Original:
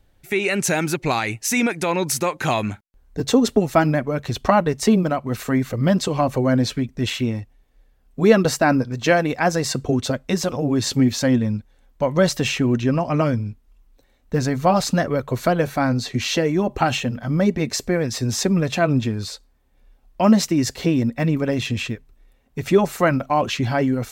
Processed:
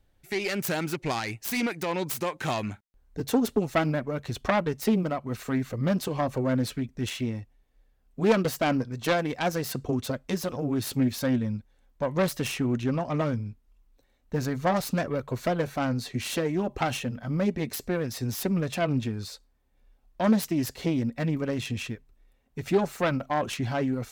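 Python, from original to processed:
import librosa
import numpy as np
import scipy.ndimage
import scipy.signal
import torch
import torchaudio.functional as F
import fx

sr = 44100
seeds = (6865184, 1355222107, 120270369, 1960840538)

y = fx.self_delay(x, sr, depth_ms=0.27)
y = F.gain(torch.from_numpy(y), -7.5).numpy()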